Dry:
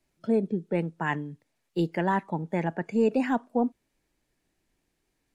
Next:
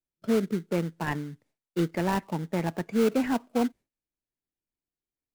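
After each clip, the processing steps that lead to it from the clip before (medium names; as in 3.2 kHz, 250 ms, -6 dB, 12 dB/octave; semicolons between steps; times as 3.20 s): gate with hold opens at -58 dBFS; in parallel at -5 dB: sample-rate reducer 1.8 kHz, jitter 20%; on the sum: trim -3.5 dB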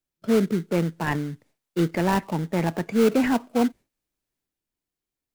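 transient shaper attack -2 dB, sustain +4 dB; trim +5 dB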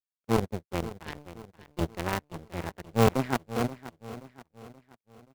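octave divider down 1 oct, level -1 dB; power-law waveshaper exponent 3; feedback delay 528 ms, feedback 46%, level -15 dB; trim +2 dB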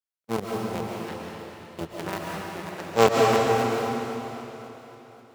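Bessel high-pass 160 Hz, order 2; time-frequency box 2.77–3.07 s, 270–8100 Hz +9 dB; reverberation RT60 3.2 s, pre-delay 95 ms, DRR -3 dB; trim -2.5 dB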